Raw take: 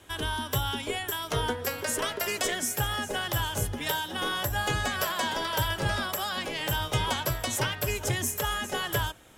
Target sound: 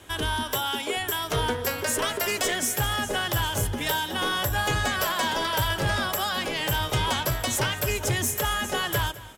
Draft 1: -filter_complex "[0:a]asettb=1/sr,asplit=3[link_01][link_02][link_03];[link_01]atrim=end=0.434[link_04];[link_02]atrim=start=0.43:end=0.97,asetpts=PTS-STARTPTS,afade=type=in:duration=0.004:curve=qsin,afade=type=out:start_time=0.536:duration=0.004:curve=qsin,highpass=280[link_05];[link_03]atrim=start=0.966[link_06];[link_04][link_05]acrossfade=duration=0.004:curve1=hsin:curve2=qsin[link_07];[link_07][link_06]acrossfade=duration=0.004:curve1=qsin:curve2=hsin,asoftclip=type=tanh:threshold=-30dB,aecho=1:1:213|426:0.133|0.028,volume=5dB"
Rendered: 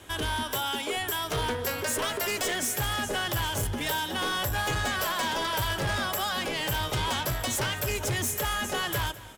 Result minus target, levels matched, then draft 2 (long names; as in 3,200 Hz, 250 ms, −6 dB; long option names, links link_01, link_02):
soft clipping: distortion +7 dB
-filter_complex "[0:a]asettb=1/sr,asplit=3[link_01][link_02][link_03];[link_01]atrim=end=0.434[link_04];[link_02]atrim=start=0.43:end=0.97,asetpts=PTS-STARTPTS,afade=type=in:duration=0.004:curve=qsin,afade=type=out:start_time=0.536:duration=0.004:curve=qsin,highpass=280[link_05];[link_03]atrim=start=0.966[link_06];[link_04][link_05]acrossfade=duration=0.004:curve1=hsin:curve2=qsin[link_07];[link_07][link_06]acrossfade=duration=0.004:curve1=qsin:curve2=hsin,asoftclip=type=tanh:threshold=-23dB,aecho=1:1:213|426:0.133|0.028,volume=5dB"